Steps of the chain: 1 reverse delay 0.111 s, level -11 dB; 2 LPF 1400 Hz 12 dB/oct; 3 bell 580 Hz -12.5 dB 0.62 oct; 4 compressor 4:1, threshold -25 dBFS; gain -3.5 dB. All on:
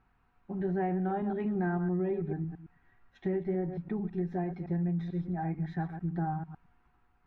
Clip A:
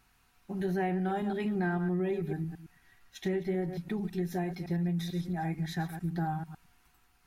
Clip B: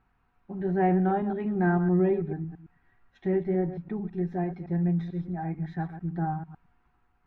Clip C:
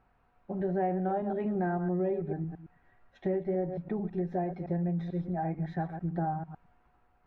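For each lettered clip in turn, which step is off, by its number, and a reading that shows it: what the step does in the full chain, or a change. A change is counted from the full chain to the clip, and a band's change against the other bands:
2, 2 kHz band +5.0 dB; 4, mean gain reduction 3.0 dB; 3, 1 kHz band +3.5 dB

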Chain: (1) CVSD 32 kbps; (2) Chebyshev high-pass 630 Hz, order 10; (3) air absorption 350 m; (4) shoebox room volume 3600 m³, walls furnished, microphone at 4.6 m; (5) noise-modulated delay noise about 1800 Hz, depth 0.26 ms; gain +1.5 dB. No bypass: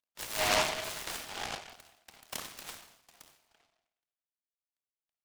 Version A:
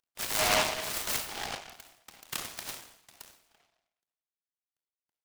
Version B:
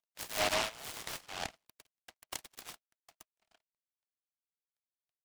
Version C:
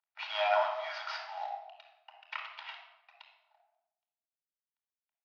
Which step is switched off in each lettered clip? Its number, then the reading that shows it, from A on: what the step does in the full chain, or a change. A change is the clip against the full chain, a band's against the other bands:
3, 8 kHz band +2.0 dB; 4, crest factor change -2.5 dB; 5, 4 kHz band -8.5 dB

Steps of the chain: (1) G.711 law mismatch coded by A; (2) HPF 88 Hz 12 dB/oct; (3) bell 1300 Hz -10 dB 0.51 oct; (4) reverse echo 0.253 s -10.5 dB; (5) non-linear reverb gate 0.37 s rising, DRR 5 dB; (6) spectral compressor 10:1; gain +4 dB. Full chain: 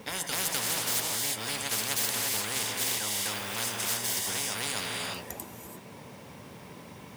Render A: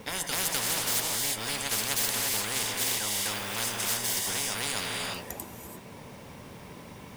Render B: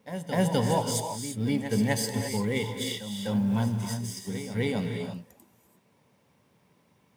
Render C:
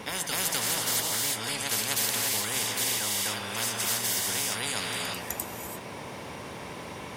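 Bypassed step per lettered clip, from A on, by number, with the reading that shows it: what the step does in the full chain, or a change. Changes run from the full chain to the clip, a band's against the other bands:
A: 2, loudness change +1.0 LU; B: 6, 250 Hz band +15.5 dB; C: 1, distortion -21 dB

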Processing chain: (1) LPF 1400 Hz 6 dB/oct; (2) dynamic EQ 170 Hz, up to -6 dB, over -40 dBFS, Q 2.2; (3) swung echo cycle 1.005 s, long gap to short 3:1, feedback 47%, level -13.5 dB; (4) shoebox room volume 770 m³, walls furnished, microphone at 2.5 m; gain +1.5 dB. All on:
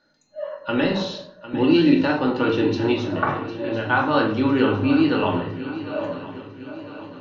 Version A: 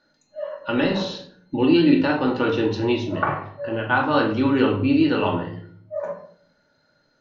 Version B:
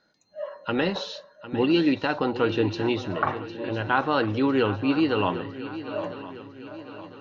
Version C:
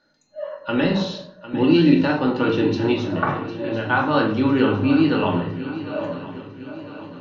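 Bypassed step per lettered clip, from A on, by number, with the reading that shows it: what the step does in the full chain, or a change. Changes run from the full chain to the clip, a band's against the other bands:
3, momentary loudness spread change -2 LU; 4, echo-to-direct 1.0 dB to -10.5 dB; 2, 125 Hz band +3.0 dB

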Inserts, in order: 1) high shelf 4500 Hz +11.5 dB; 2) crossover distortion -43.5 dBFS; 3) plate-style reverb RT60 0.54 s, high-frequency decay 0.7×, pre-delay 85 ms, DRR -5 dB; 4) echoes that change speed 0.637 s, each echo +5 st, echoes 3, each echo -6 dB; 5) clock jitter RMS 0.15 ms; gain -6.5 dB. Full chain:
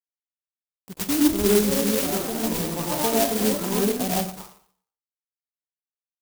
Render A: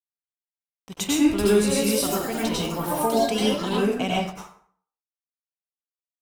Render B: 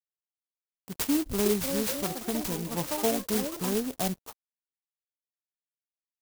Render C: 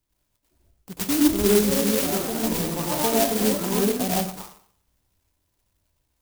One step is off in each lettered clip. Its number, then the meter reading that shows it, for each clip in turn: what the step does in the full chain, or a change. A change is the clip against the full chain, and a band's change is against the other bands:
5, 8 kHz band -3.0 dB; 3, crest factor change +2.0 dB; 2, distortion -24 dB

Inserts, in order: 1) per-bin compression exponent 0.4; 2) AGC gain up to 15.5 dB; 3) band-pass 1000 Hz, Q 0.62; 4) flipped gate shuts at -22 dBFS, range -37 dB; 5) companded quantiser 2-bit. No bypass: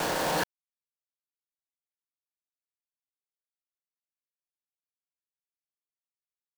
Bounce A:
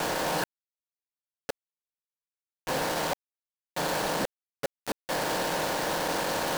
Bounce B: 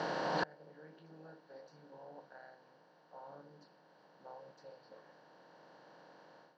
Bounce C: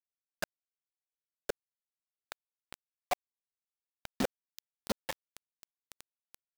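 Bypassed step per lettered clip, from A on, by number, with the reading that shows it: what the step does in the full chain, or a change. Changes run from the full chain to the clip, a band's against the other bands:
2, crest factor change -7.5 dB; 5, distortion -4 dB; 1, 250 Hz band +5.5 dB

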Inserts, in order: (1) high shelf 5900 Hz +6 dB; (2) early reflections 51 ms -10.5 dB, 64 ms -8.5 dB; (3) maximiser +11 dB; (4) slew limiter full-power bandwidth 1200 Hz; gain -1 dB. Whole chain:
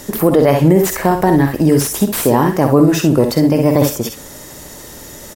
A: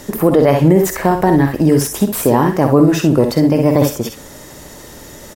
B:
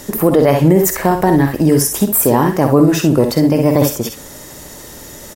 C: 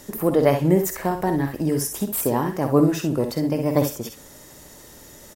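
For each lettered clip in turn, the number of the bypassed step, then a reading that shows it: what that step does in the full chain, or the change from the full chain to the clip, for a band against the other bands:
1, 8 kHz band -2.5 dB; 4, distortion -17 dB; 3, crest factor change +6.5 dB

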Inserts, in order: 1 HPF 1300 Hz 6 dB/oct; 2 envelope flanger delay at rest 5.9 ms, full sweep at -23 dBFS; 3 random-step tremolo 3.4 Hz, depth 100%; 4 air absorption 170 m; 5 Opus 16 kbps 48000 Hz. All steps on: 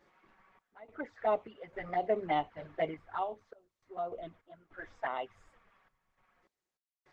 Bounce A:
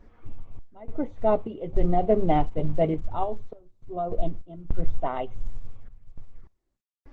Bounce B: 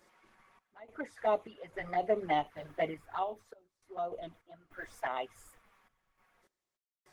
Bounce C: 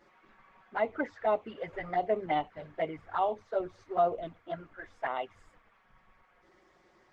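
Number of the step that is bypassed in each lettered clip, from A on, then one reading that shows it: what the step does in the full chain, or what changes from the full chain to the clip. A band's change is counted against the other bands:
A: 1, 2 kHz band -15.0 dB; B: 4, 4 kHz band +2.0 dB; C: 3, momentary loudness spread change -5 LU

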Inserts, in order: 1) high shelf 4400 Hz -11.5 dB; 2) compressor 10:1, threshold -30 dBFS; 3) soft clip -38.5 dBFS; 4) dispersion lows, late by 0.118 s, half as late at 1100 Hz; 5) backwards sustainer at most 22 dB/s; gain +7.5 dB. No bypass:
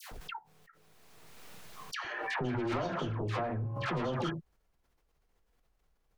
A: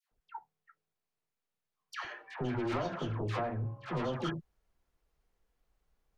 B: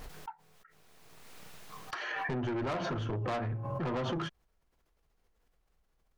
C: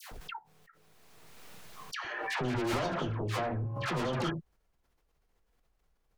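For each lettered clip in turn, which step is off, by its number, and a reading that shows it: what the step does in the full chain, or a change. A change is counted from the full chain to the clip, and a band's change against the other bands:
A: 5, momentary loudness spread change -2 LU; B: 4, crest factor change -3.5 dB; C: 2, mean gain reduction 5.5 dB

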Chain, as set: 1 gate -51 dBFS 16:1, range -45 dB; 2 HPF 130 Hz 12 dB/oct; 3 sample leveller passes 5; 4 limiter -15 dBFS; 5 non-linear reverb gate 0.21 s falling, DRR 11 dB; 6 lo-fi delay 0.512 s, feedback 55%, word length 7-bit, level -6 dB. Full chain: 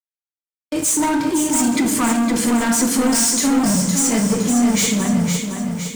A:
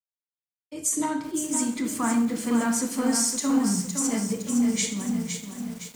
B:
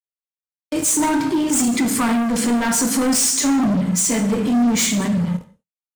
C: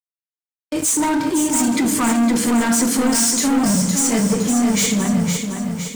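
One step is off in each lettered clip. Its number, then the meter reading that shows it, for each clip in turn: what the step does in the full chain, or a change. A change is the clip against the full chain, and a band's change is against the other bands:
3, 125 Hz band -2.5 dB; 6, crest factor change -1.5 dB; 5, crest factor change -1.5 dB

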